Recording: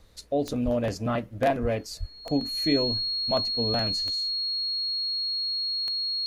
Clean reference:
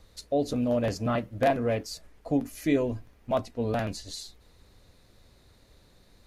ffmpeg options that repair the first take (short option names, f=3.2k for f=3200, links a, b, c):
-filter_complex "[0:a]adeclick=t=4,bandreject=f=4.3k:w=30,asplit=3[a][b][c];[a]afade=t=out:st=0.64:d=0.02[d];[b]highpass=f=140:w=0.5412,highpass=f=140:w=1.3066,afade=t=in:st=0.64:d=0.02,afade=t=out:st=0.76:d=0.02[e];[c]afade=t=in:st=0.76:d=0.02[f];[d][e][f]amix=inputs=3:normalize=0,asplit=3[g][h][i];[g]afade=t=out:st=1.61:d=0.02[j];[h]highpass=f=140:w=0.5412,highpass=f=140:w=1.3066,afade=t=in:st=1.61:d=0.02,afade=t=out:st=1.73:d=0.02[k];[i]afade=t=in:st=1.73:d=0.02[l];[j][k][l]amix=inputs=3:normalize=0,asplit=3[m][n][o];[m]afade=t=out:st=1.99:d=0.02[p];[n]highpass=f=140:w=0.5412,highpass=f=140:w=1.3066,afade=t=in:st=1.99:d=0.02,afade=t=out:st=2.11:d=0.02[q];[o]afade=t=in:st=2.11:d=0.02[r];[p][q][r]amix=inputs=3:normalize=0,asetnsamples=n=441:p=0,asendcmd='4.1 volume volume 7dB',volume=0dB"